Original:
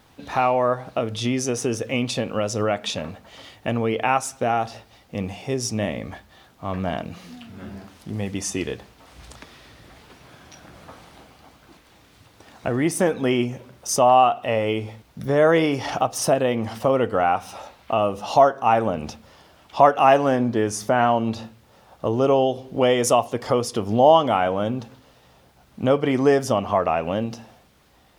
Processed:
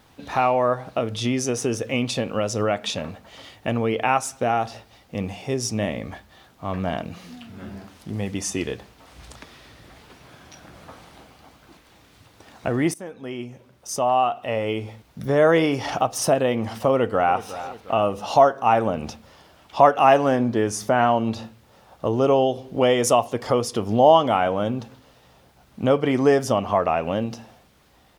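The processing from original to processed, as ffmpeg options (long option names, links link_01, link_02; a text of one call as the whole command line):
ffmpeg -i in.wav -filter_complex "[0:a]asplit=2[link_01][link_02];[link_02]afade=type=in:start_time=16.91:duration=0.01,afade=type=out:start_time=17.44:duration=0.01,aecho=0:1:360|720|1080|1440|1800:0.188365|0.0941825|0.0470912|0.0235456|0.0117728[link_03];[link_01][link_03]amix=inputs=2:normalize=0,asplit=2[link_04][link_05];[link_04]atrim=end=12.94,asetpts=PTS-STARTPTS,afade=type=out:start_time=12.936:duration=0.004:curve=hsin:silence=0.112202[link_06];[link_05]atrim=start=12.94,asetpts=PTS-STARTPTS,afade=type=in:duration=2.34:silence=0.112202[link_07];[link_06][link_07]concat=n=2:v=0:a=1" out.wav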